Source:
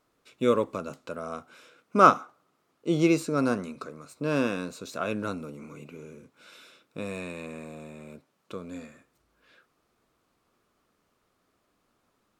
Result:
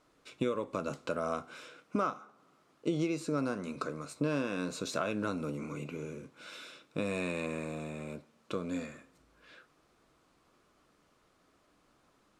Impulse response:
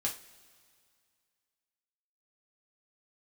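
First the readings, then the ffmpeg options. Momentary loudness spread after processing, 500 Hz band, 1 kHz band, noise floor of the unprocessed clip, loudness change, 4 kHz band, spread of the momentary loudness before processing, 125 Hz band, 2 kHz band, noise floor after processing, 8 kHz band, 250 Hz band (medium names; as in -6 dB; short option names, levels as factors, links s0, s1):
14 LU, -6.5 dB, -12.0 dB, -74 dBFS, -9.0 dB, -3.0 dB, 22 LU, -4.0 dB, -5.5 dB, -70 dBFS, -3.0 dB, -5.5 dB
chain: -filter_complex "[0:a]lowpass=10000,acompressor=threshold=0.0251:ratio=16,asplit=2[s0][s1];[1:a]atrim=start_sample=2205,asetrate=57330,aresample=44100[s2];[s1][s2]afir=irnorm=-1:irlink=0,volume=0.316[s3];[s0][s3]amix=inputs=2:normalize=0,volume=1.26"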